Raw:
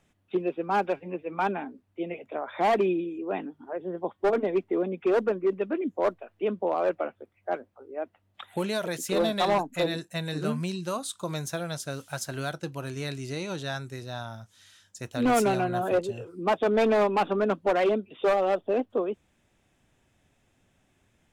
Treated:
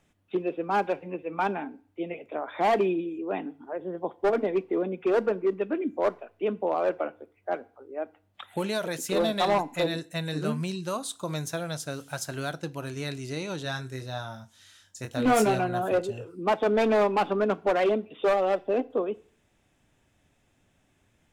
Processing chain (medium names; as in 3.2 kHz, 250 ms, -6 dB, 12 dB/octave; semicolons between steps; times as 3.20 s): 13.63–15.59 s: doubling 23 ms -6 dB; FDN reverb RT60 0.47 s, low-frequency decay 1×, high-frequency decay 0.95×, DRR 16.5 dB